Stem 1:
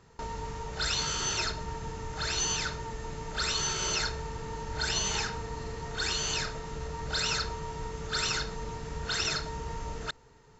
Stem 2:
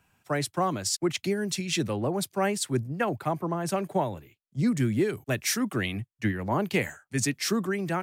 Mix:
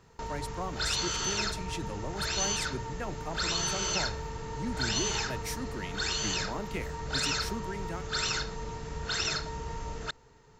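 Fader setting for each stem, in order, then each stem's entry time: -0.5 dB, -11.0 dB; 0.00 s, 0.00 s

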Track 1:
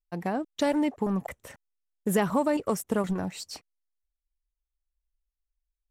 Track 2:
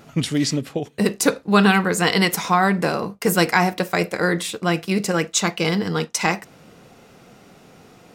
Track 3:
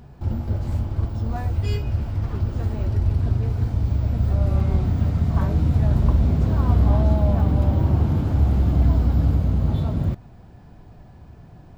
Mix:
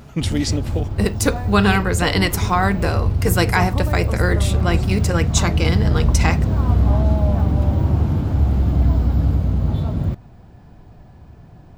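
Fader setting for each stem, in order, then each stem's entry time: -5.0 dB, -1.0 dB, +1.5 dB; 1.40 s, 0.00 s, 0.00 s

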